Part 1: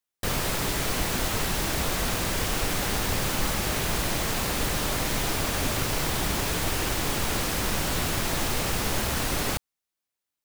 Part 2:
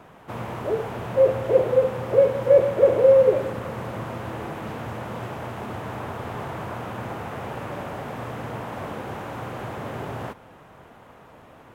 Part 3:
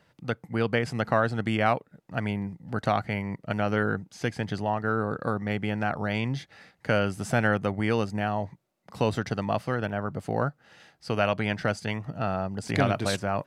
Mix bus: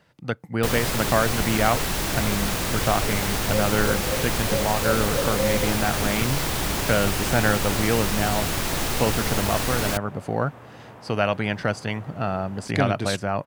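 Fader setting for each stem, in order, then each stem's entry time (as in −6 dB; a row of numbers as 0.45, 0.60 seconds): +1.5, −11.5, +2.5 decibels; 0.40, 2.35, 0.00 seconds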